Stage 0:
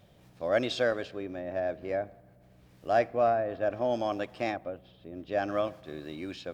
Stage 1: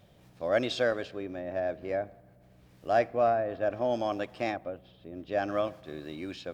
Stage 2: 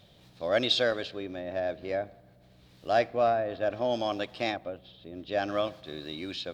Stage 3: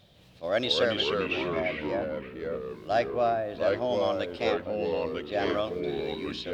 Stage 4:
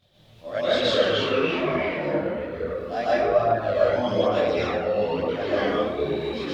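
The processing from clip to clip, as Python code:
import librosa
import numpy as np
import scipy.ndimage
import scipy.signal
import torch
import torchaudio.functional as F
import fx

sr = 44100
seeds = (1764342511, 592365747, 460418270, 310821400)

y1 = x
y2 = fx.peak_eq(y1, sr, hz=3900.0, db=11.5, octaves=0.83)
y3 = fx.echo_pitch(y2, sr, ms=157, semitones=-3, count=3, db_per_echo=-3.0)
y3 = fx.attack_slew(y3, sr, db_per_s=440.0)
y3 = y3 * librosa.db_to_amplitude(-1.0)
y4 = fx.rev_plate(y3, sr, seeds[0], rt60_s=1.2, hf_ratio=0.5, predelay_ms=105, drr_db=-8.5)
y4 = fx.chorus_voices(y4, sr, voices=2, hz=0.57, base_ms=23, depth_ms=4.5, mix_pct=65)
y4 = y4 * librosa.db_to_amplitude(-1.5)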